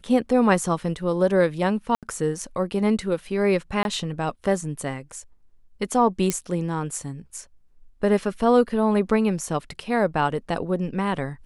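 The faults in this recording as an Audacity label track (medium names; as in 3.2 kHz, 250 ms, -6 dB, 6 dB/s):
1.950000	2.030000	dropout 77 ms
3.830000	3.850000	dropout 21 ms
6.300000	6.300000	pop -8 dBFS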